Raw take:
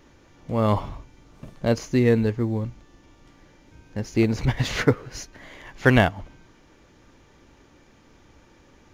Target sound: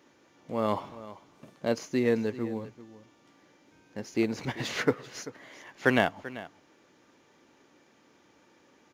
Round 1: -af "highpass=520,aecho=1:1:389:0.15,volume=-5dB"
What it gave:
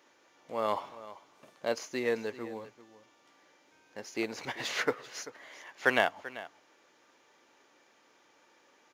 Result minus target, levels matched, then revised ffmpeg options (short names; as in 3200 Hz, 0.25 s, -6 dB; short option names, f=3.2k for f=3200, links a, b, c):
250 Hz band -6.5 dB
-af "highpass=220,aecho=1:1:389:0.15,volume=-5dB"